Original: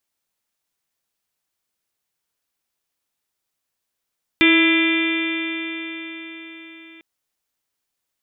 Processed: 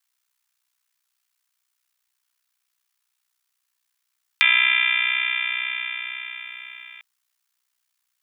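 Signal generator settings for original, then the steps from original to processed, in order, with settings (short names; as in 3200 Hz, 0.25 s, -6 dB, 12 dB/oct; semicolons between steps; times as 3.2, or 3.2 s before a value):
stretched partials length 2.60 s, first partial 325 Hz, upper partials -20/-18.5/-15.5/-12/-6/-1/-12/-12/-8 dB, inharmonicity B 0.0018, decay 4.86 s, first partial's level -13.5 dB
HPF 1000 Hz 24 dB/oct; in parallel at +1.5 dB: compressor, threshold -26 dBFS; on the sum: ring modulator 31 Hz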